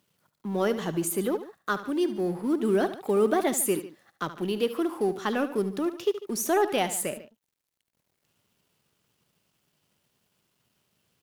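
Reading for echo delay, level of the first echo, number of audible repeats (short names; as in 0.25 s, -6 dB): 73 ms, -13.0 dB, 2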